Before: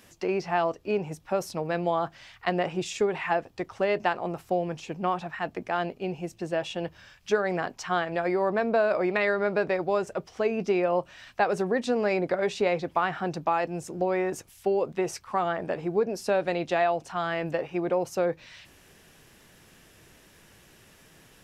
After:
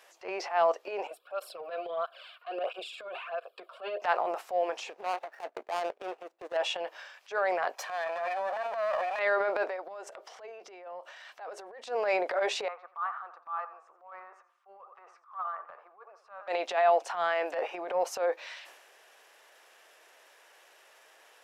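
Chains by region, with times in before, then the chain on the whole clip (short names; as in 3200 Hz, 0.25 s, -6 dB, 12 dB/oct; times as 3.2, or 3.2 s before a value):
1.07–4.02 fixed phaser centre 1300 Hz, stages 8 + tape flanging out of phase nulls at 1.5 Hz, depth 2.7 ms
4.9–6.57 median filter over 41 samples + transient shaper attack +7 dB, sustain -11 dB
7.75–9.19 minimum comb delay 1.2 ms + compressor 10:1, threshold -29 dBFS + comb 1.7 ms, depth 44%
9.69–11.84 compressor 12:1, threshold -37 dBFS + notch 2500 Hz, Q 17
12.68–16.48 band-pass 1200 Hz, Q 11 + warbling echo 87 ms, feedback 35%, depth 80 cents, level -16 dB
whole clip: inverse Chebyshev high-pass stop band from 170 Hz, stop band 60 dB; tilt -2.5 dB/oct; transient shaper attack -11 dB, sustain +7 dB; gain +2 dB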